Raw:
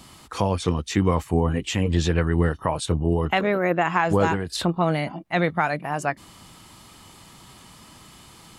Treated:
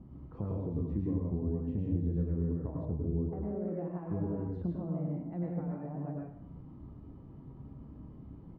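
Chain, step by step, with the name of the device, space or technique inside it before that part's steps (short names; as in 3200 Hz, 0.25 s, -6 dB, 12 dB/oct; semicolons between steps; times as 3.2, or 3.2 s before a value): television next door (compressor 3:1, threshold -34 dBFS, peak gain reduction 14.5 dB; LPF 300 Hz 12 dB/oct; reverb RT60 0.65 s, pre-delay 95 ms, DRR -3 dB); doubler 29 ms -12.5 dB; 2.85–3.68 LPF 1500 Hz 12 dB/oct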